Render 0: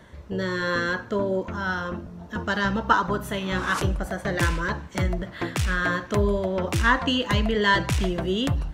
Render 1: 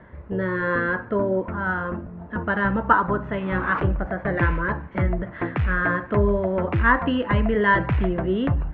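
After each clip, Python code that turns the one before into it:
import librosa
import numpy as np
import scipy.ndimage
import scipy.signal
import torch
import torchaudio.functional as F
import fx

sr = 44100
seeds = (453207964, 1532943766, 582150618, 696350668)

y = scipy.signal.sosfilt(scipy.signal.butter(4, 2100.0, 'lowpass', fs=sr, output='sos'), x)
y = y * librosa.db_to_amplitude(2.5)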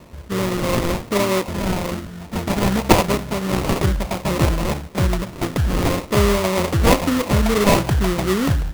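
y = fx.sample_hold(x, sr, seeds[0], rate_hz=1600.0, jitter_pct=20)
y = y * librosa.db_to_amplitude(3.5)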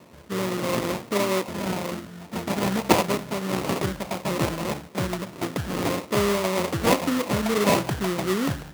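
y = scipy.signal.sosfilt(scipy.signal.butter(2, 150.0, 'highpass', fs=sr, output='sos'), x)
y = y * librosa.db_to_amplitude(-4.5)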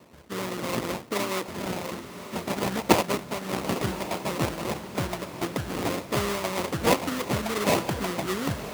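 y = fx.hpss(x, sr, part='harmonic', gain_db=-8)
y = fx.echo_diffused(y, sr, ms=1065, feedback_pct=45, wet_db=-12)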